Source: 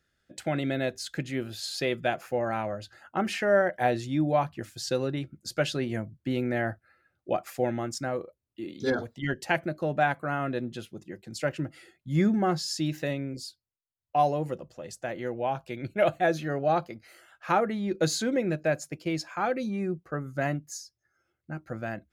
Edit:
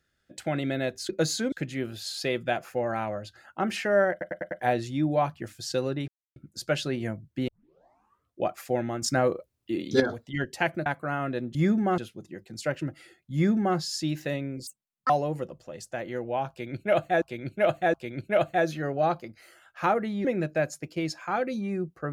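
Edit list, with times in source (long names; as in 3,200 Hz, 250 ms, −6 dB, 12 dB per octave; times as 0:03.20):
0:03.68: stutter 0.10 s, 5 plays
0:05.25: splice in silence 0.28 s
0:06.37: tape start 0.93 s
0:07.91–0:08.89: clip gain +7.5 dB
0:09.75–0:10.06: remove
0:12.11–0:12.54: duplicate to 0:10.75
0:13.44–0:14.20: play speed 178%
0:15.60–0:16.32: repeat, 3 plays
0:17.91–0:18.34: move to 0:01.09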